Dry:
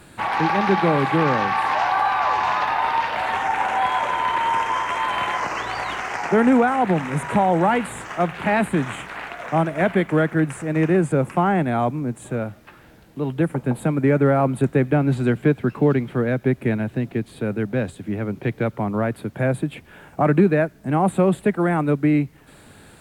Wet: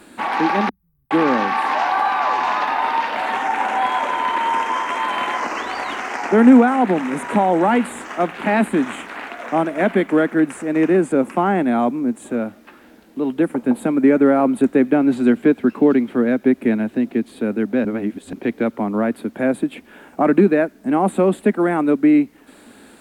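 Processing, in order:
0:00.69–0:01.11: inverse Chebyshev band-stop filter 290–6,900 Hz, stop band 70 dB
low shelf with overshoot 180 Hz −9.5 dB, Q 3
0:17.85–0:18.33: reverse
level +1 dB

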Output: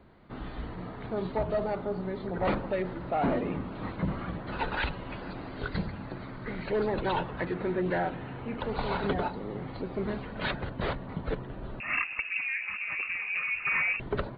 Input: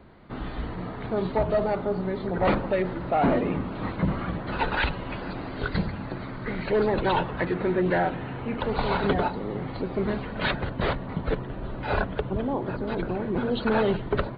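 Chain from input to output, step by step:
0:11.80–0:14.00: voice inversion scrambler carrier 2,700 Hz
level −5.5 dB

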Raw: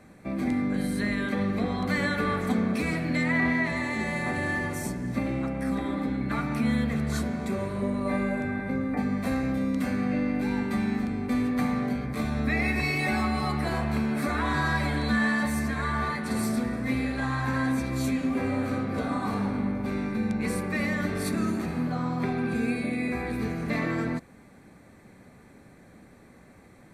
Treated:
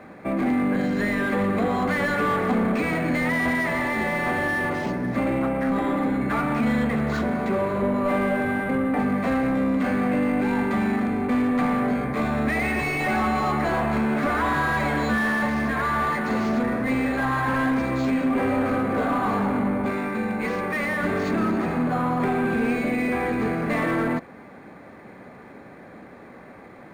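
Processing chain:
0:19.90–0:21.03: low-shelf EQ 460 Hz −6 dB
mid-hump overdrive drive 21 dB, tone 1,100 Hz, clips at −14 dBFS
linearly interpolated sample-rate reduction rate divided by 4×
level +1.5 dB

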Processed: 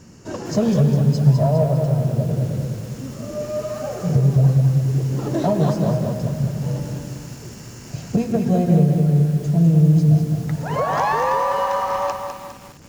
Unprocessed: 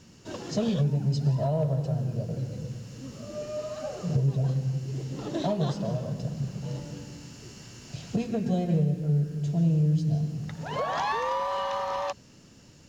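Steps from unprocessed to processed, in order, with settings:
parametric band 3,500 Hz −11 dB 0.91 octaves
feedback echo at a low word length 203 ms, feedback 55%, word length 8 bits, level −6 dB
level +8.5 dB

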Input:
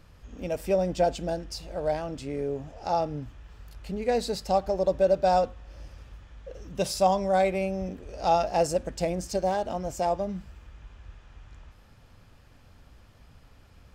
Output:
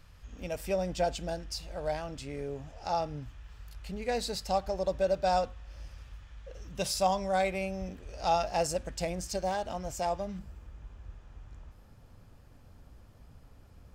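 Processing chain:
parametric band 340 Hz −8 dB 2.6 octaves, from 0:10.39 2,800 Hz

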